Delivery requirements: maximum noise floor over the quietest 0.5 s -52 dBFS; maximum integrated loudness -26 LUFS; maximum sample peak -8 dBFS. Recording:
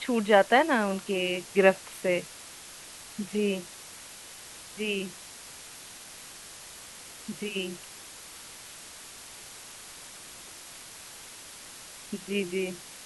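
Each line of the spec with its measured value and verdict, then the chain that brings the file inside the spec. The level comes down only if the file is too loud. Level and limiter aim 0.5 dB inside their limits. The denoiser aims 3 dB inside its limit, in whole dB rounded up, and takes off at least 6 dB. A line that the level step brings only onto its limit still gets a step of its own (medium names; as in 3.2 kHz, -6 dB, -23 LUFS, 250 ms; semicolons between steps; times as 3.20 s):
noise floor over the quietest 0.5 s -46 dBFS: fail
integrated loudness -28.0 LUFS: pass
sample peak -5.5 dBFS: fail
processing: noise reduction 9 dB, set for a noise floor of -46 dBFS; peak limiter -8.5 dBFS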